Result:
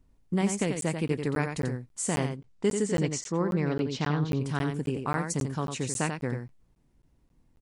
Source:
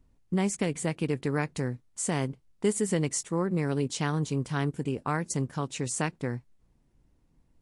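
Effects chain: 2.20–4.39 s: low-pass 9.6 kHz -> 4.3 kHz 24 dB/octave; delay 89 ms -6.5 dB; crackling interface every 0.27 s, samples 512, zero, from 0.81 s

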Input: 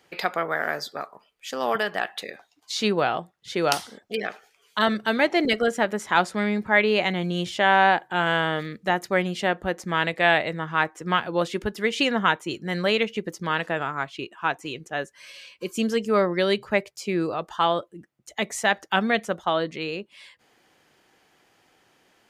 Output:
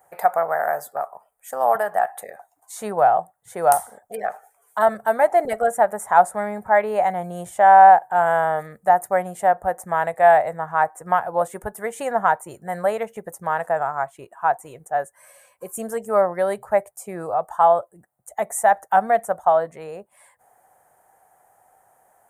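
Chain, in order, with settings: FFT filter 110 Hz 0 dB, 320 Hz -11 dB, 740 Hz +14 dB, 1.1 kHz +3 dB, 1.8 kHz -2 dB, 2.8 kHz -19 dB, 4.9 kHz -18 dB, 8.8 kHz +12 dB; trim -1.5 dB

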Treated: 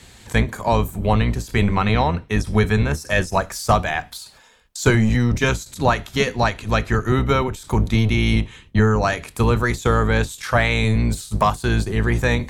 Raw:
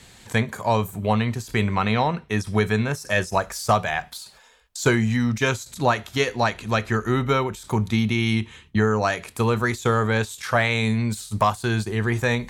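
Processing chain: octave divider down 1 oct, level 0 dB; trim +2 dB

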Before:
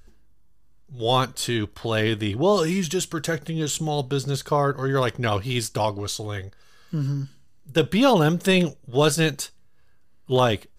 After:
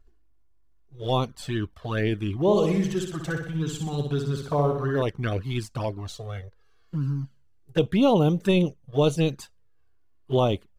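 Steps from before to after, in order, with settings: companding laws mixed up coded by A; treble shelf 3 kHz -11 dB; touch-sensitive flanger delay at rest 2.9 ms, full sweep at -17.5 dBFS; 2.41–5.02 s: flutter echo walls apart 10.6 m, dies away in 0.66 s

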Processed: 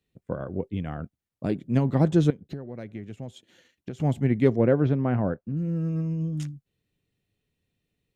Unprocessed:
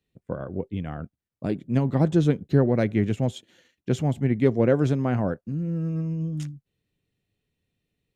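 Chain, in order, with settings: 2.30–4.00 s: compression 16:1, threshold -33 dBFS, peak gain reduction 20 dB; 4.56–5.57 s: distance through air 300 m

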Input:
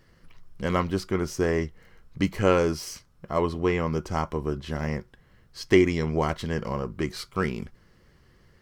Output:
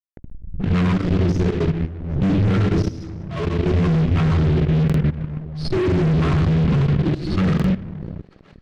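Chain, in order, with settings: spectral contrast enhancement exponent 2.5; reverb removal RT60 0.85 s; static phaser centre 1.3 kHz, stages 4; reverberation RT60 1.1 s, pre-delay 21 ms, DRR -1.5 dB; fuzz box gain 40 dB, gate -39 dBFS; low-pass 2.8 kHz 12 dB/octave; thinning echo 265 ms, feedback 65%, high-pass 450 Hz, level -24 dB; level held to a coarse grid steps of 15 dB; peaking EQ 960 Hz -10.5 dB 2 oct; buffer glitch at 4.85/7.55 s, samples 2048, times 1; swell ahead of each attack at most 61 dB/s

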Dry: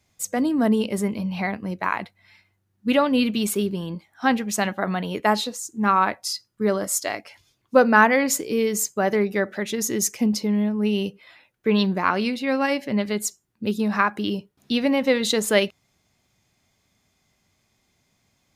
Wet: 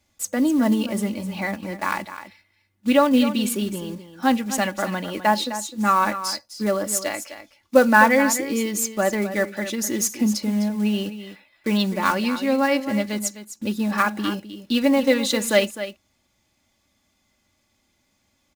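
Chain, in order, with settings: block-companded coder 5-bit; comb 3.5 ms, depth 58%; delay 256 ms -12 dB; trim -1 dB

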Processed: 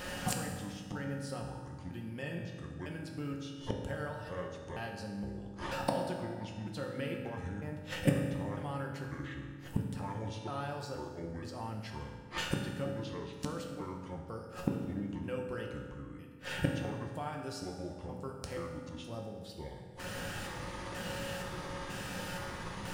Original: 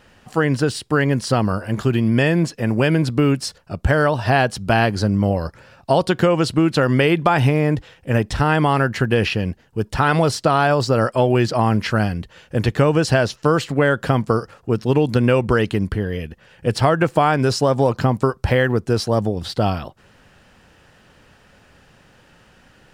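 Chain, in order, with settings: pitch shift switched off and on -7 st, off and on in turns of 476 ms; treble shelf 7 kHz +10.5 dB; feedback comb 180 Hz, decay 0.35 s, harmonics all, mix 70%; inverted gate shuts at -31 dBFS, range -34 dB; hard clipper -34.5 dBFS, distortion -20 dB; reverberation RT60 1.8 s, pre-delay 3 ms, DRR 0.5 dB; trim +16 dB

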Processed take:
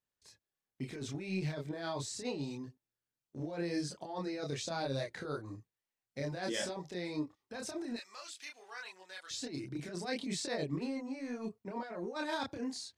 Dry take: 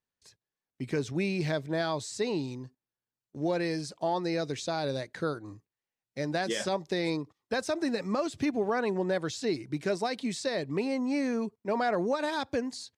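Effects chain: 7.96–9.31 s: Bessel high-pass 2.8 kHz, order 2; compressor with a negative ratio -32 dBFS, ratio -0.5; chorus voices 2, 0.72 Hz, delay 28 ms, depth 1.8 ms; trim -2 dB

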